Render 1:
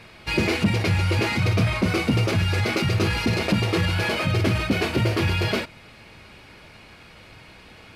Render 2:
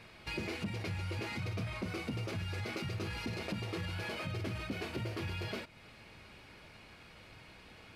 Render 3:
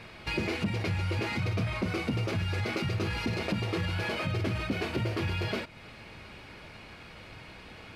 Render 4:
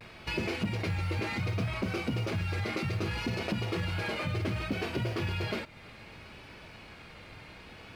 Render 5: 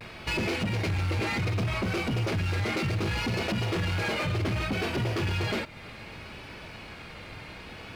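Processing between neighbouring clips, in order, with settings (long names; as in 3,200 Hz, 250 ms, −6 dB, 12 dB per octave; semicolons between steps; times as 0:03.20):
downward compressor 2 to 1, threshold −34 dBFS, peak gain reduction 10.5 dB; level −8.5 dB
high-shelf EQ 5,900 Hz −6 dB; level +8 dB
pitch vibrato 0.65 Hz 52 cents; log-companded quantiser 8 bits; level −1.5 dB
gain into a clipping stage and back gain 31 dB; level +6 dB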